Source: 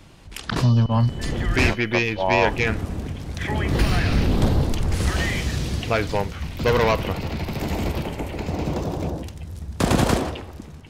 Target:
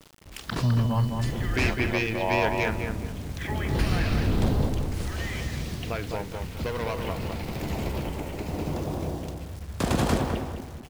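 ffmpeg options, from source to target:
-filter_complex "[0:a]asettb=1/sr,asplit=3[s0][s1][s2];[s0]atrim=end=4.654[s3];[s1]atrim=start=4.65:end=6.98,asetpts=PTS-STARTPTS,afade=t=in:d=0.004:c=qsin,afade=t=out:st=2.326:d=0.004:c=qsin,acompressor=threshold=0.0794:ratio=6[s4];[s2]atrim=start=6.976[s5];[s3][s4]acrossfade=d=0.004:c1=hsin:c2=qsin[s6];[s6][s5]acrossfade=d=0.004:c1=qsin:c2=hsin,acrusher=bits=6:mix=0:aa=0.000001,asplit=2[s7][s8];[s8]adelay=207,lowpass=f=1700:p=1,volume=0.631,asplit=2[s9][s10];[s10]adelay=207,lowpass=f=1700:p=1,volume=0.34,asplit=2[s11][s12];[s12]adelay=207,lowpass=f=1700:p=1,volume=0.34,asplit=2[s13][s14];[s14]adelay=207,lowpass=f=1700:p=1,volume=0.34[s15];[s7][s9][s11][s13][s15]amix=inputs=5:normalize=0,volume=0.501"

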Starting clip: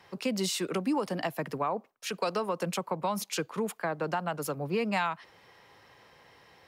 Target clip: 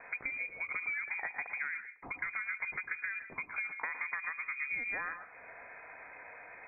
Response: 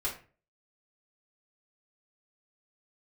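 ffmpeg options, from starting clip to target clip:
-filter_complex "[0:a]acompressor=threshold=0.00708:ratio=8,asplit=2[s0][s1];[1:a]atrim=start_sample=2205,asetrate=48510,aresample=44100,adelay=110[s2];[s1][s2]afir=irnorm=-1:irlink=0,volume=0.237[s3];[s0][s3]amix=inputs=2:normalize=0,lowpass=f=2200:t=q:w=0.5098,lowpass=f=2200:t=q:w=0.6013,lowpass=f=2200:t=q:w=0.9,lowpass=f=2200:t=q:w=2.563,afreqshift=-2600,volume=2.37"

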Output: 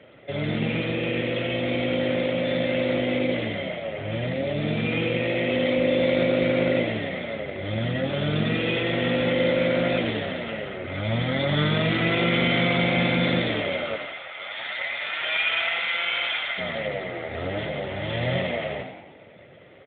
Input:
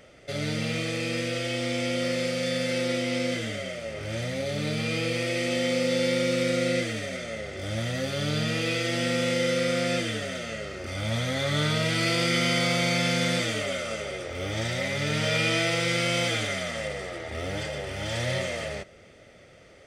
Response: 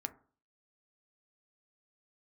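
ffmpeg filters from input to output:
-filter_complex "[0:a]asplit=3[s0][s1][s2];[s0]afade=t=out:st=13.96:d=0.02[s3];[s1]highpass=f=760:w=0.5412,highpass=f=760:w=1.3066,afade=t=in:st=13.96:d=0.02,afade=t=out:st=16.57:d=0.02[s4];[s2]afade=t=in:st=16.57:d=0.02[s5];[s3][s4][s5]amix=inputs=3:normalize=0,asplit=7[s6][s7][s8][s9][s10][s11][s12];[s7]adelay=90,afreqshift=55,volume=0.422[s13];[s8]adelay=180,afreqshift=110,volume=0.219[s14];[s9]adelay=270,afreqshift=165,volume=0.114[s15];[s10]adelay=360,afreqshift=220,volume=0.0596[s16];[s11]adelay=450,afreqshift=275,volume=0.0309[s17];[s12]adelay=540,afreqshift=330,volume=0.016[s18];[s6][s13][s14][s15][s16][s17][s18]amix=inputs=7:normalize=0,volume=1.5" -ar 8000 -c:a libopencore_amrnb -b:a 12200

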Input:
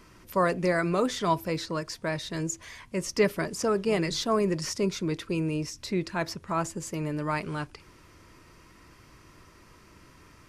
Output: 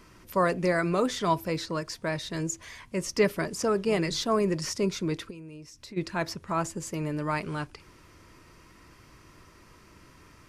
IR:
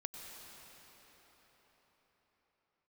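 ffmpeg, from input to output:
-filter_complex "[0:a]asplit=3[s0][s1][s2];[s0]afade=t=out:st=5.29:d=0.02[s3];[s1]acompressor=threshold=0.00631:ratio=5,afade=t=in:st=5.29:d=0.02,afade=t=out:st=5.96:d=0.02[s4];[s2]afade=t=in:st=5.96:d=0.02[s5];[s3][s4][s5]amix=inputs=3:normalize=0"

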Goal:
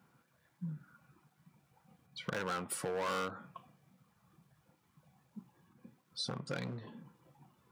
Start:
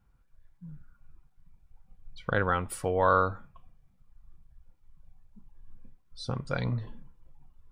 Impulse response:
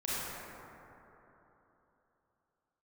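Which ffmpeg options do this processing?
-af "asoftclip=type=hard:threshold=0.0376,acompressor=threshold=0.00794:ratio=16,highpass=f=150:w=0.5412,highpass=f=150:w=1.3066,volume=2.51"

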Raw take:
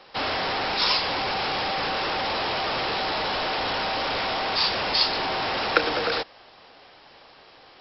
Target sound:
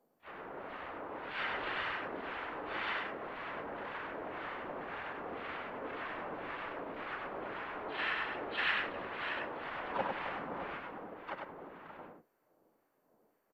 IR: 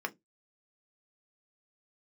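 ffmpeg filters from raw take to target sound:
-filter_complex "[0:a]aderivative,asplit=2[s0][s1];[s1]aecho=0:1:151|348|560|761:0.531|0.266|0.168|0.668[s2];[s0][s2]amix=inputs=2:normalize=0,acrossover=split=2000[s3][s4];[s3]aeval=exprs='val(0)*(1-0.7/2+0.7/2*cos(2*PI*3.3*n/s))':c=same[s5];[s4]aeval=exprs='val(0)*(1-0.7/2-0.7/2*cos(2*PI*3.3*n/s))':c=same[s6];[s5][s6]amix=inputs=2:normalize=0,adynamicsmooth=sensitivity=7.5:basefreq=900,afftfilt=real='hypot(re,im)*cos(2*PI*random(0))':imag='hypot(re,im)*sin(2*PI*random(1))':win_size=512:overlap=0.75,asplit=4[s7][s8][s9][s10];[s8]asetrate=29433,aresample=44100,atempo=1.49831,volume=0.891[s11];[s9]asetrate=52444,aresample=44100,atempo=0.840896,volume=0.891[s12];[s10]asetrate=66075,aresample=44100,atempo=0.66742,volume=0.562[s13];[s7][s11][s12][s13]amix=inputs=4:normalize=0,lowpass=2600,asetrate=25442,aresample=44100,asplit=2[s14][s15];[s15]aecho=0:1:99:0.668[s16];[s14][s16]amix=inputs=2:normalize=0,volume=1.41" -ar 48000 -c:a mp2 -b:a 192k

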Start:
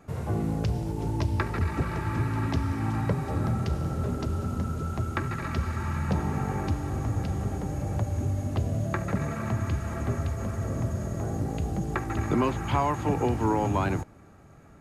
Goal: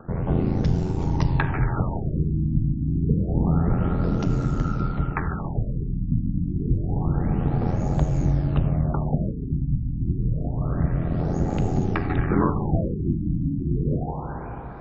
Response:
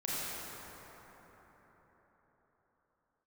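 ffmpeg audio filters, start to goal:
-filter_complex "[0:a]acompressor=mode=upward:threshold=0.00398:ratio=2.5,aphaser=in_gain=1:out_gain=1:delay=1.6:decay=0.36:speed=0.26:type=triangular,aeval=exprs='val(0)*sin(2*PI*43*n/s)':c=same,asplit=2[s0][s1];[1:a]atrim=start_sample=2205,lowpass=7400[s2];[s1][s2]afir=irnorm=-1:irlink=0,volume=0.282[s3];[s0][s3]amix=inputs=2:normalize=0,afftfilt=real='re*lt(b*sr/1024,310*pow(7800/310,0.5+0.5*sin(2*PI*0.28*pts/sr)))':imag='im*lt(b*sr/1024,310*pow(7800/310,0.5+0.5*sin(2*PI*0.28*pts/sr)))':win_size=1024:overlap=0.75,volume=1.58"

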